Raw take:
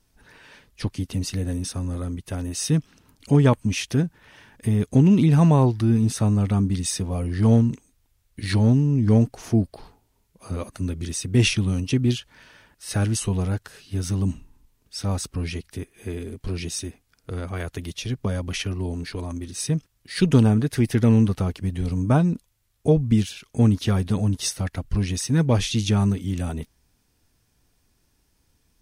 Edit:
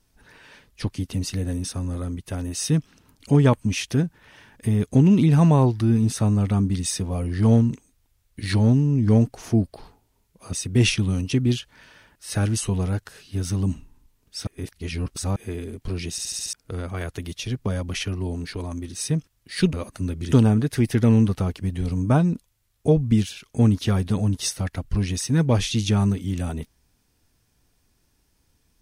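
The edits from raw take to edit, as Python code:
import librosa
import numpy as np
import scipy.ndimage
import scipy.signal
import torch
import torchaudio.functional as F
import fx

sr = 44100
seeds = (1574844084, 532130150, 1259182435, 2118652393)

y = fx.edit(x, sr, fx.move(start_s=10.53, length_s=0.59, to_s=20.32),
    fx.reverse_span(start_s=15.06, length_s=0.89),
    fx.stutter_over(start_s=16.7, slice_s=0.07, count=6), tone=tone)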